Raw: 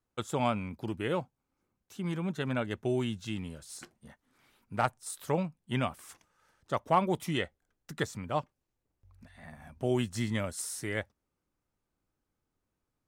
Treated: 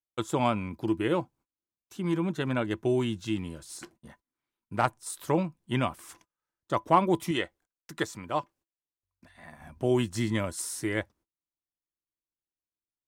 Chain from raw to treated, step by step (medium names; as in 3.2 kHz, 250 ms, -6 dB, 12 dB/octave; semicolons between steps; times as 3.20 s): 7.31–9.61 s: bass shelf 270 Hz -8.5 dB; gate -60 dBFS, range -26 dB; small resonant body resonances 330/1000 Hz, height 10 dB, ringing for 90 ms; trim +2.5 dB